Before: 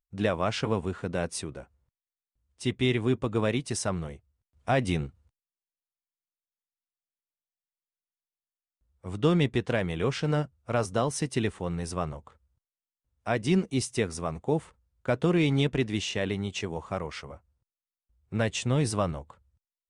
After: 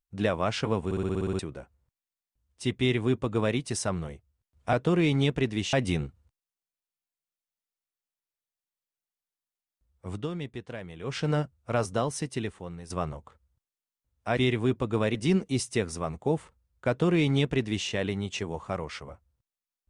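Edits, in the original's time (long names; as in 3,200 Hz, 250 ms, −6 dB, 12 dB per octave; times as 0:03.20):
0:00.85: stutter in place 0.06 s, 9 plays
0:02.79–0:03.57: duplicate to 0:13.37
0:09.14–0:10.17: duck −11.5 dB, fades 0.13 s
0:10.83–0:11.90: fade out linear, to −11.5 dB
0:15.10–0:16.10: duplicate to 0:04.73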